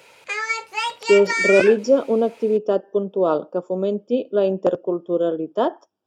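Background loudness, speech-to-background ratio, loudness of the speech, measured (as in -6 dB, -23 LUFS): -23.0 LUFS, 2.5 dB, -20.5 LUFS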